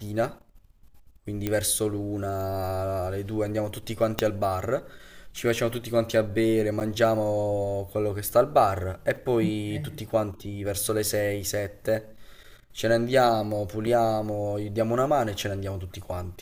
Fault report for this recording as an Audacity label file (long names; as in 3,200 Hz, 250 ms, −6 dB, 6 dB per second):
1.470000	1.470000	click −13 dBFS
4.190000	4.190000	click −7 dBFS
6.800000	6.810000	drop-out 8.6 ms
9.160000	9.160000	drop-out 3.7 ms
11.070000	11.070000	click
13.870000	13.880000	drop-out 5.1 ms